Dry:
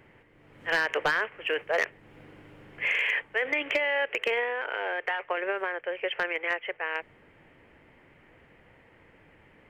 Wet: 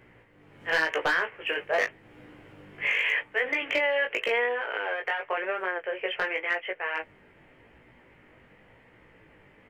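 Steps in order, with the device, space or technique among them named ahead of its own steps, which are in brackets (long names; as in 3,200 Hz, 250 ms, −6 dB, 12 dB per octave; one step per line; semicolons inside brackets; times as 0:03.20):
double-tracked vocal (double-tracking delay 16 ms −11 dB; chorus effect 0.89 Hz, delay 16.5 ms, depth 4.5 ms)
level +3.5 dB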